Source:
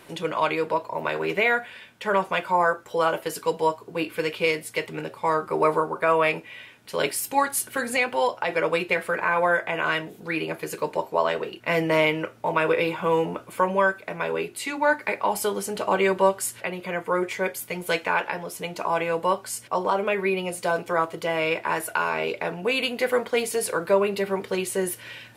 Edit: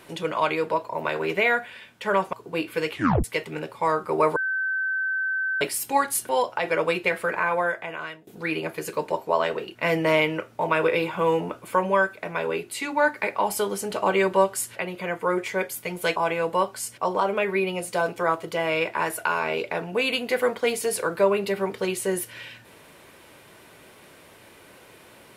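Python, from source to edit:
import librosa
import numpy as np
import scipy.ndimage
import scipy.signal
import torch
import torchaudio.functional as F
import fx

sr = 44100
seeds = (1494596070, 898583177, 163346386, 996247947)

y = fx.edit(x, sr, fx.cut(start_s=2.33, length_s=1.42),
    fx.tape_stop(start_s=4.33, length_s=0.33),
    fx.bleep(start_s=5.78, length_s=1.25, hz=1540.0, db=-23.0),
    fx.cut(start_s=7.71, length_s=0.43),
    fx.fade_out_to(start_s=9.17, length_s=0.95, floor_db=-20.5),
    fx.cut(start_s=18.01, length_s=0.85), tone=tone)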